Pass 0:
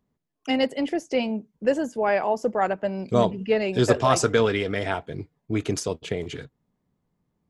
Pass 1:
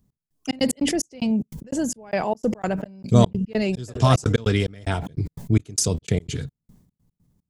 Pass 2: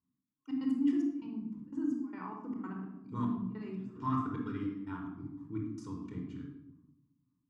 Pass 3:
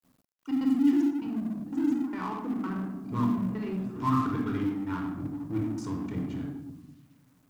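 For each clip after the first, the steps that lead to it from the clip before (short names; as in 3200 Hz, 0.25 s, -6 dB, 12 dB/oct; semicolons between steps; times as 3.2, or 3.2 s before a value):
step gate "x..xx.x.x" 148 bpm -60 dB; tone controls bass +15 dB, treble +14 dB; sustainer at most 72 dB/s; gain -2 dB
soft clip -5.5 dBFS, distortion -20 dB; double band-pass 560 Hz, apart 2 oct; shoebox room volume 2800 m³, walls furnished, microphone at 4.6 m; gain -8 dB
G.711 law mismatch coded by mu; gain +5.5 dB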